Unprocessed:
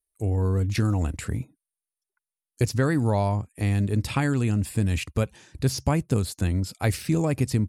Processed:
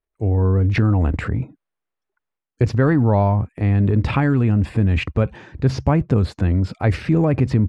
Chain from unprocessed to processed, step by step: low-pass 1.8 kHz 12 dB/octave; transient shaper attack -1 dB, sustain +8 dB; trim +6.5 dB

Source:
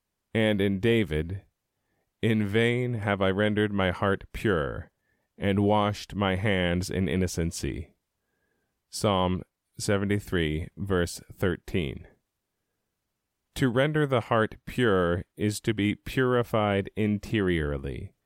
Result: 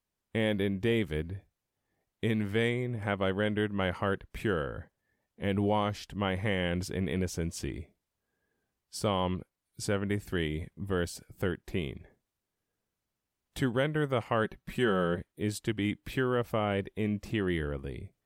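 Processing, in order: 14.44–15.19 s: comb 5.3 ms, depth 53%; trim -5 dB

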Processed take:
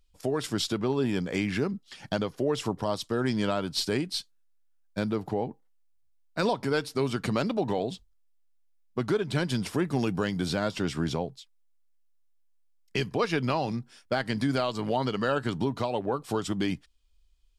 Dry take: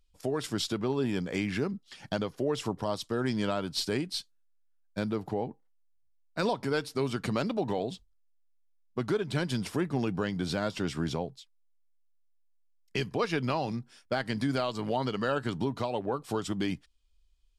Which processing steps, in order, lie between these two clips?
9.87–10.48 s: treble shelf 4.7 kHz -> 8.4 kHz +10 dB; trim +2.5 dB

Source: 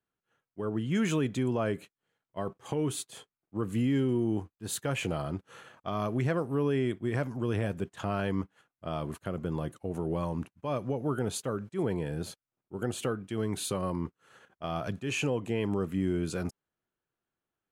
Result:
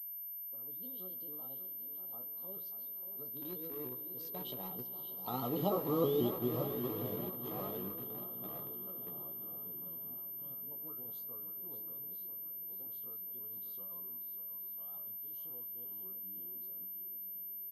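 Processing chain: sawtooth pitch modulation +3.5 st, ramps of 159 ms; Doppler pass-by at 5.89 s, 36 m/s, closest 15 m; Chebyshev band-stop 1.3–3 kHz, order 5; de-hum 322.2 Hz, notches 13; time-frequency box 9.37–10.71 s, 340–1700 Hz -13 dB; high-pass 240 Hz 6 dB/octave; shuffle delay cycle 979 ms, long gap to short 1.5:1, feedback 46%, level -10 dB; in parallel at -11 dB: bit crusher 7-bit; on the sum: doubling 16 ms -7 dB; on a send at -12.5 dB: reverberation RT60 4.6 s, pre-delay 37 ms; on the sum: class-D stage that switches slowly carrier 13 kHz; trim -1.5 dB

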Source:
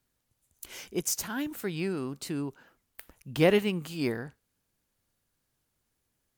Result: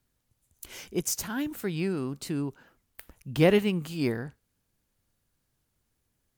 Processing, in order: bass shelf 210 Hz +6 dB

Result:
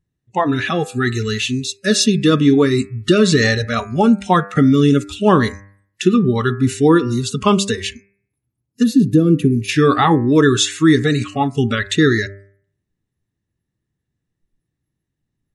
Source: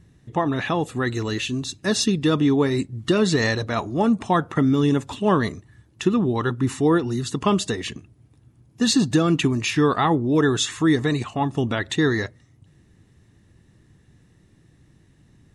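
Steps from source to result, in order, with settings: spectral noise reduction 29 dB; time-frequency box 8.83–9.69 s, 780–9500 Hz -17 dB; de-hum 99.04 Hz, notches 26; trim +7 dB

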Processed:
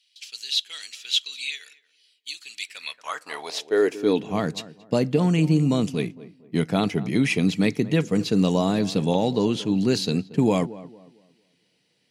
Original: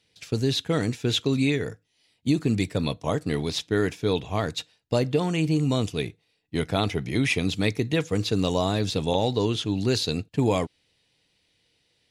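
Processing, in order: on a send: tape echo 228 ms, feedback 36%, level -15.5 dB, low-pass 1.2 kHz; on the sum: high-pass sweep 3.3 kHz -> 180 Hz, 2.57–4.34 s; band-stop 3.6 kHz, Q 11

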